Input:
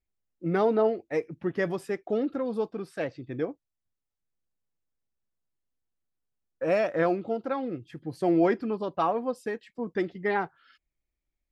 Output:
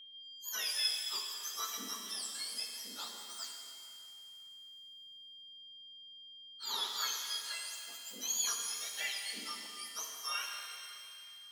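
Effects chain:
frequency axis turned over on the octave scale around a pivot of 1,500 Hz
steady tone 3,200 Hz −43 dBFS
reverb with rising layers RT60 2.5 s, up +7 semitones, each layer −8 dB, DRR 1.5 dB
level −8 dB

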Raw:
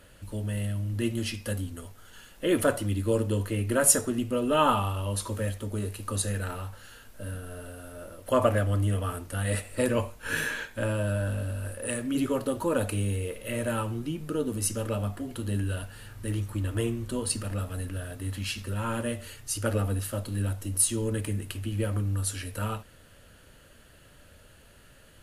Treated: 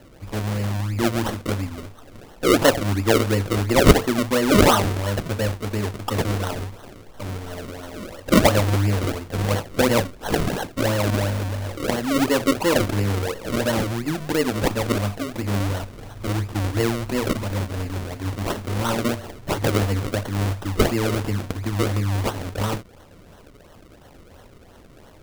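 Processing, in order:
bass and treble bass −3 dB, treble −1 dB
sample-and-hold swept by an LFO 36×, swing 100% 2.9 Hz
level +8.5 dB

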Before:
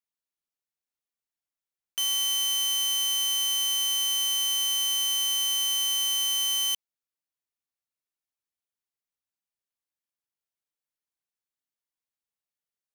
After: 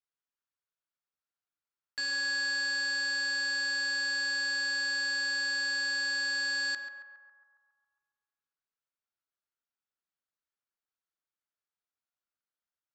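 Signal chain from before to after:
inverse Chebyshev low-pass filter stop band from 10,000 Hz, stop band 40 dB
low-shelf EQ 320 Hz +10.5 dB
ring modulation 1,400 Hz
feedback echo with a band-pass in the loop 137 ms, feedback 65%, band-pass 990 Hz, level −6.5 dB
level −1.5 dB

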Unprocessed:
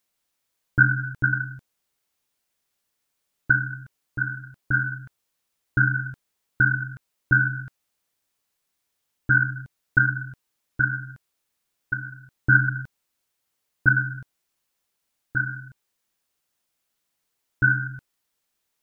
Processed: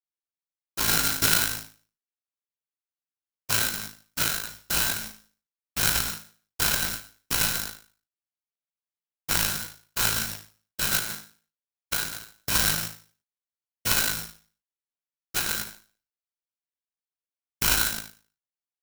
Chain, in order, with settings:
stylus tracing distortion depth 0.34 ms
downward expander −38 dBFS
parametric band 180 Hz −8.5 dB 1.2 octaves
in parallel at 0 dB: downward compressor, threshold −30 dBFS, peak gain reduction 17.5 dB
on the sum: brickwall limiter −15.5 dBFS, peak gain reduction 11.5 dB
random phases in short frames
0:00.88–0:01.50: hollow resonant body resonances 270/860/1,400 Hz, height 9 dB
on a send: flutter between parallel walls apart 3.2 metres, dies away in 0.41 s
on the sum: bad sample-rate conversion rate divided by 8×, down none, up zero stuff
converter with an unsteady clock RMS 0.034 ms
level −10 dB

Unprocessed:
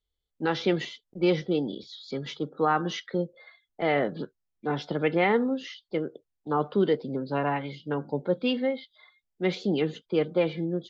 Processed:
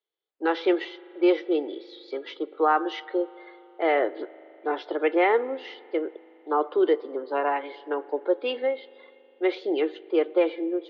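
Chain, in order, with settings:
elliptic high-pass filter 330 Hz, stop band 50 dB
high-frequency loss of the air 270 metres
convolution reverb RT60 3.5 s, pre-delay 40 ms, DRR 20 dB
level +4.5 dB

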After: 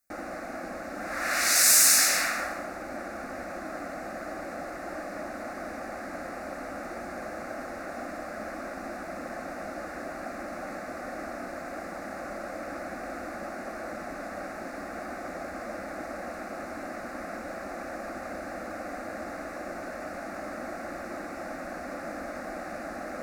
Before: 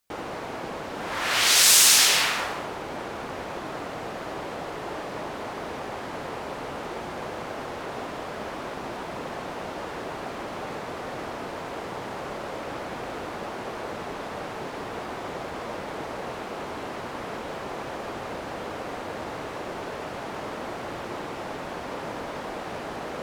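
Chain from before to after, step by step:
phaser with its sweep stopped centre 640 Hz, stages 8

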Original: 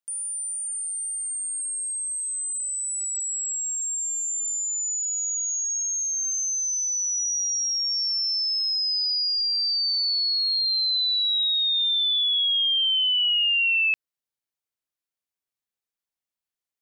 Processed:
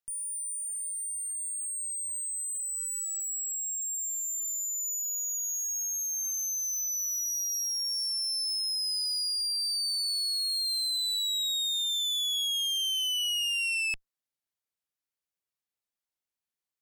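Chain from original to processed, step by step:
asymmetric clip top −35 dBFS, bottom −21.5 dBFS
level −2.5 dB

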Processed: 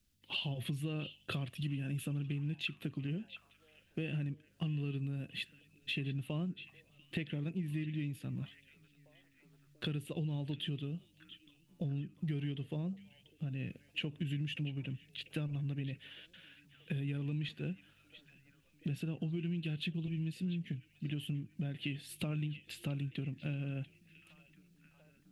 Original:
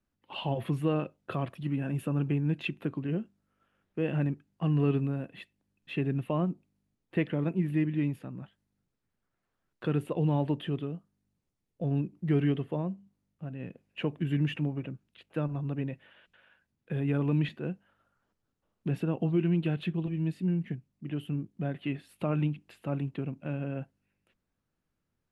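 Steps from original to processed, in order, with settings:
drawn EQ curve 100 Hz 0 dB, 1,000 Hz −16 dB, 3,300 Hz +5 dB
downward compressor 6 to 1, threshold −43 dBFS, peak gain reduction 15.5 dB
echo through a band-pass that steps 690 ms, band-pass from 2,800 Hz, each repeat −0.7 octaves, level −12 dB
level +7.5 dB

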